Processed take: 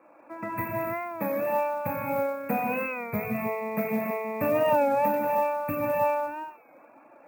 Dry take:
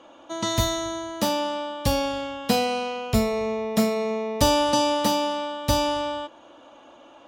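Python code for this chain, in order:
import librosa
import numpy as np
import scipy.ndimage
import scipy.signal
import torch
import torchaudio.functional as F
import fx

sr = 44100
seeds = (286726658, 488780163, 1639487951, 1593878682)

p1 = fx.brickwall_bandstop(x, sr, low_hz=2700.0, high_hz=14000.0)
p2 = fx.high_shelf(p1, sr, hz=3300.0, db=9.5)
p3 = fx.rev_gated(p2, sr, seeds[0], gate_ms=360, shape='flat', drr_db=-4.5)
p4 = fx.dereverb_blind(p3, sr, rt60_s=0.59)
p5 = scipy.signal.sosfilt(scipy.signal.butter(4, 120.0, 'highpass', fs=sr, output='sos'), p4)
p6 = p5 + fx.echo_wet_highpass(p5, sr, ms=74, feedback_pct=73, hz=1700.0, wet_db=-13.5, dry=0)
p7 = fx.quant_float(p6, sr, bits=4)
p8 = fx.record_warp(p7, sr, rpm=33.33, depth_cents=100.0)
y = F.gain(torch.from_numpy(p8), -8.5).numpy()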